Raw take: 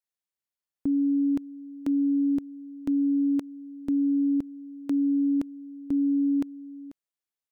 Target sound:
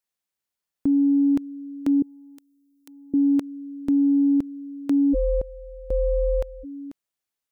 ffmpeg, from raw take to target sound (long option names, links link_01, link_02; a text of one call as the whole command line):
ffmpeg -i in.wav -filter_complex "[0:a]acontrast=87,asettb=1/sr,asplit=3[link_01][link_02][link_03];[link_01]atrim=end=2.024[link_04];[link_02]atrim=start=2.02:end=3.14,asetpts=PTS-STARTPTS,afade=type=in:duration=0.004:curve=qsin,afade=type=out:start_time=1.116:duration=0.004:curve=qsin,aderivative[link_05];[link_03]atrim=start=3.136[link_06];[link_04][link_05]acrossfade=duration=0.004:curve1=hsin:curve2=qsin[link_07];[link_07][link_06]acrossfade=duration=0.004:curve1=qsin:curve2=hsin,asplit=3[link_08][link_09][link_10];[link_08]afade=type=out:start_time=5.13:duration=0.02[link_11];[link_09]aeval=exprs='val(0)*sin(2*PI*240*n/s)':channel_layout=same,afade=type=in:start_time=5.13:duration=0.02,afade=type=out:start_time=6.63:duration=0.02[link_12];[link_10]afade=type=in:start_time=6.63:duration=0.02[link_13];[link_11][link_12][link_13]amix=inputs=3:normalize=0,volume=-2dB" out.wav